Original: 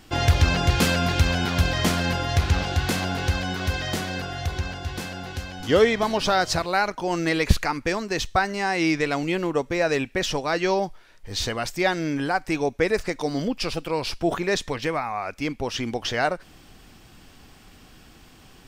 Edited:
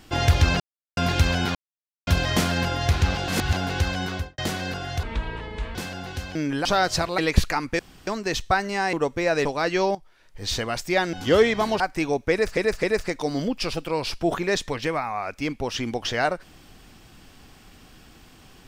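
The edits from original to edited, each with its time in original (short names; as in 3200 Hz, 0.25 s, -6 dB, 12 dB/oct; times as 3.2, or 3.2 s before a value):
0.6–0.97 mute
1.55 insert silence 0.52 s
2.76–3.01 reverse
3.56–3.86 studio fade out
4.51–4.95 speed 61%
5.55–6.22 swap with 12.02–12.32
6.75–7.31 cut
7.92 insert room tone 0.28 s
8.78–9.47 cut
9.99–10.34 cut
10.84–11.34 fade in, from -14 dB
12.83–13.09 loop, 3 plays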